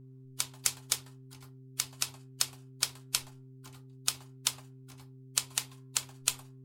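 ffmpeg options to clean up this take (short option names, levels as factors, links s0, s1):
-af "bandreject=f=130.8:t=h:w=4,bandreject=f=261.6:t=h:w=4,bandreject=f=392.4:t=h:w=4"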